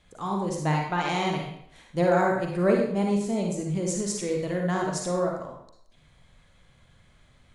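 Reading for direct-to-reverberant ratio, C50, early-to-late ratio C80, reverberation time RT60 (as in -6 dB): 0.0 dB, 2.0 dB, 5.5 dB, 0.70 s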